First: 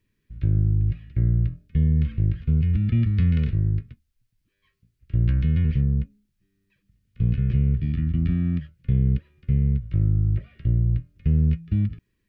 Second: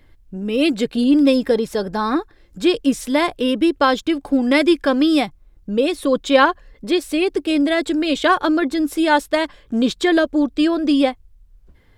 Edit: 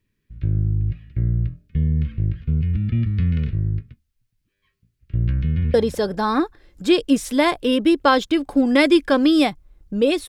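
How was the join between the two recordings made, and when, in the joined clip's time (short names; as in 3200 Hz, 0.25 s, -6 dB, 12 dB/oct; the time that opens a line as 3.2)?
first
5.34–5.74 echo throw 0.2 s, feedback 20%, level -13 dB
5.74 switch to second from 1.5 s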